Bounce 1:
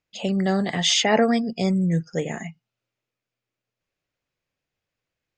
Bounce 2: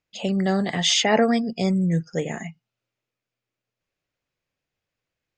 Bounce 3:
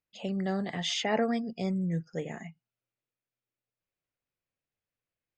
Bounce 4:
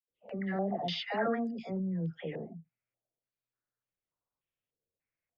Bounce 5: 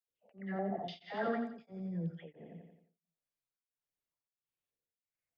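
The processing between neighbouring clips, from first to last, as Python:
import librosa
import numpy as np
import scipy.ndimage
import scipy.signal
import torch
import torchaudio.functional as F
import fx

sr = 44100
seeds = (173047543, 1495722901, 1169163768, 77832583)

y1 = x
y2 = fx.high_shelf(y1, sr, hz=5900.0, db=-10.0)
y2 = y2 * 10.0 ** (-9.0 / 20.0)
y3 = fx.air_absorb(y2, sr, metres=290.0)
y3 = fx.dispersion(y3, sr, late='lows', ms=106.0, hz=800.0)
y3 = fx.filter_held_lowpass(y3, sr, hz=3.4, low_hz=480.0, high_hz=6900.0)
y3 = y3 * 10.0 ** (-3.5 / 20.0)
y4 = fx.echo_feedback(y3, sr, ms=88, feedback_pct=54, wet_db=-10.0)
y4 = y4 * np.abs(np.cos(np.pi * 1.5 * np.arange(len(y4)) / sr))
y4 = y4 * 10.0 ** (-3.5 / 20.0)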